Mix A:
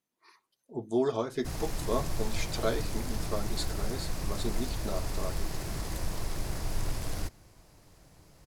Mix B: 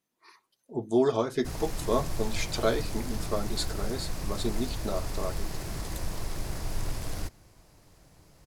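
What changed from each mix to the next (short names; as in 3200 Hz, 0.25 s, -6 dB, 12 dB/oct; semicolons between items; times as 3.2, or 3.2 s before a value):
speech +4.0 dB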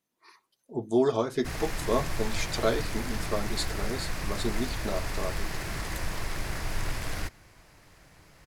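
background: add bell 1900 Hz +10 dB 1.7 oct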